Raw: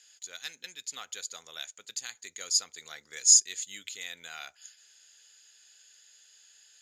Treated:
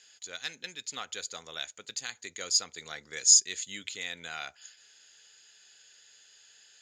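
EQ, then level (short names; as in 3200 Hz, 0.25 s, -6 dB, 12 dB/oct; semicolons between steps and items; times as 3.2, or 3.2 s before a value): air absorption 64 m; low shelf 480 Hz +7 dB; +4.0 dB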